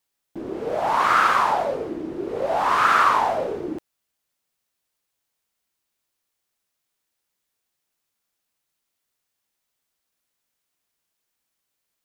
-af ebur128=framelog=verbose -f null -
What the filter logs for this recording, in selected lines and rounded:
Integrated loudness:
  I:         -20.9 LUFS
  Threshold: -31.5 LUFS
Loudness range:
  LRA:        14.7 LU
  Threshold: -42.9 LUFS
  LRA low:   -35.2 LUFS
  LRA high:  -20.5 LUFS